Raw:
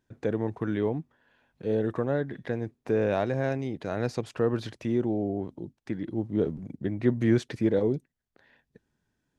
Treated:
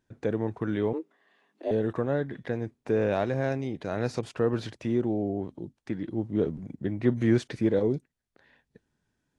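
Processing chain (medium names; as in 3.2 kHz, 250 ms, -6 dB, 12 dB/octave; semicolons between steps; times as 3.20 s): 0.93–1.71 s: frequency shift +160 Hz; AAC 48 kbps 24 kHz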